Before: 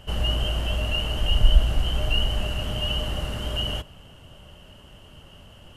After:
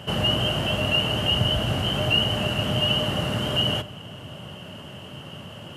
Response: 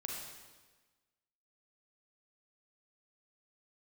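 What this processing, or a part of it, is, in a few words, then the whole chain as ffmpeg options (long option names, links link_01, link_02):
compressed reverb return: -filter_complex "[0:a]highpass=frequency=110:width=0.5412,highpass=frequency=110:width=1.3066,asplit=2[link_01][link_02];[1:a]atrim=start_sample=2205[link_03];[link_02][link_03]afir=irnorm=-1:irlink=0,acompressor=threshold=-45dB:ratio=4,volume=-1dB[link_04];[link_01][link_04]amix=inputs=2:normalize=0,bass=frequency=250:gain=3,treble=frequency=4000:gain=-4,volume=5.5dB"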